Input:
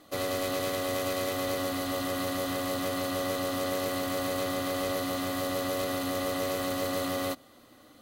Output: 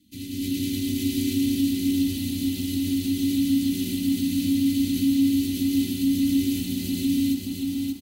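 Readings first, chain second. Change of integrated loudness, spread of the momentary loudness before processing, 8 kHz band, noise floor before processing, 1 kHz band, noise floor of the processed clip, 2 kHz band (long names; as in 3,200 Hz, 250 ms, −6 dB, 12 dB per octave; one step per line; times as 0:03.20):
+6.5 dB, 1 LU, +3.0 dB, −56 dBFS, below −25 dB, −34 dBFS, −6.0 dB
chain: comb filter 3.4 ms, depth 63%
automatic gain control gain up to 15 dB
Chebyshev band-stop filter 220–2,600 Hz, order 3
low shelf with overshoot 650 Hz +10 dB, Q 1.5
downward compressor 6 to 1, threshold −19 dBFS, peak gain reduction 8 dB
high-pass filter 58 Hz 12 dB per octave
single-tap delay 110 ms −19 dB
dynamic equaliser 310 Hz, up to +7 dB, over −37 dBFS, Q 1.7
feedback echo at a low word length 579 ms, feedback 35%, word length 8 bits, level −3.5 dB
level −7.5 dB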